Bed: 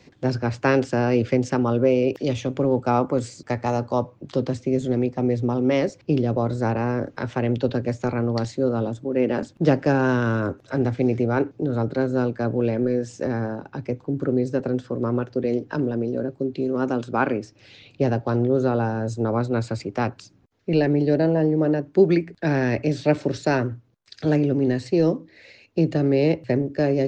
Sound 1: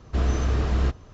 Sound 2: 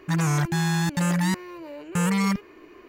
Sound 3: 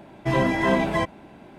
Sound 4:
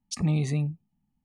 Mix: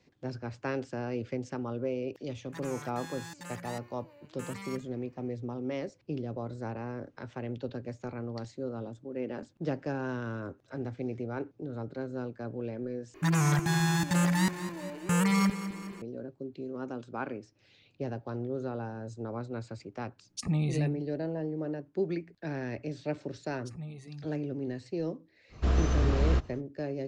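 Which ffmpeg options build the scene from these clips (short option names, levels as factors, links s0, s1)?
-filter_complex "[2:a]asplit=2[s0][s1];[4:a]asplit=2[s2][s3];[0:a]volume=0.188[s4];[s0]highpass=f=480:p=1[s5];[s1]aecho=1:1:209|418|627|836|1045|1254:0.237|0.13|0.0717|0.0395|0.0217|0.0119[s6];[s3]asplit=2[s7][s8];[s8]adelay=6.9,afreqshift=-2.1[s9];[s7][s9]amix=inputs=2:normalize=1[s10];[s4]asplit=2[s11][s12];[s11]atrim=end=13.144[s13];[s6]atrim=end=2.88,asetpts=PTS-STARTPTS,volume=0.708[s14];[s12]atrim=start=16.016[s15];[s5]atrim=end=2.88,asetpts=PTS-STARTPTS,volume=0.168,afade=t=in:d=0.004:c=hsin,afade=t=out:st=2.876:d=0.004:c=hsin,adelay=2440[s16];[s2]atrim=end=1.24,asetpts=PTS-STARTPTS,volume=0.631,afade=t=in:d=0.004:c=hsin,afade=t=out:st=1.236:d=0.004:c=hsin,adelay=20260[s17];[s10]atrim=end=1.24,asetpts=PTS-STARTPTS,volume=0.188,afade=t=in:d=0.004:c=hsin,afade=t=out:st=1.236:d=0.004:c=hsin,adelay=23540[s18];[1:a]atrim=end=1.13,asetpts=PTS-STARTPTS,volume=0.708,afade=t=in:d=0.05,afade=t=out:st=1.08:d=0.05,adelay=25490[s19];[s13][s14]acrossfade=d=0.004:c1=hsin:c2=hsin[s20];[s20][s15]acrossfade=d=0.004:c1=hsin:c2=hsin[s21];[s21][s16][s17][s18][s19]amix=inputs=5:normalize=0"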